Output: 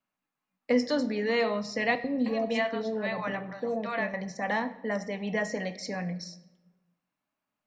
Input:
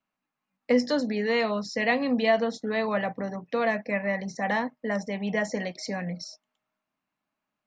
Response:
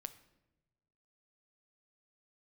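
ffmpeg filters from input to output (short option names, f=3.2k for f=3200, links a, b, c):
-filter_complex "[0:a]asettb=1/sr,asplit=3[a][b][c];[a]atrim=end=1.954[d];[b]atrim=start=1.95:end=4.14,asetpts=PTS-STARTPTS,afade=t=in:d=0.004:c=qsin,afade=t=out:st=2.186:d=0.004:c=qsin,acrossover=split=650|5200[e][f][g];[e]adelay=90[h];[f]adelay=310[i];[h][i][g]amix=inputs=3:normalize=0,atrim=end_sample=96579[j];[c]atrim=start=4.136[k];[d][j]acrossfade=d=0.004:c1=hsin:c2=qsin[l];[l][k]acrossfade=d=0.004:c1=qsin:c2=hsin[m];[1:a]atrim=start_sample=2205[n];[m][n]afir=irnorm=-1:irlink=0,volume=2dB"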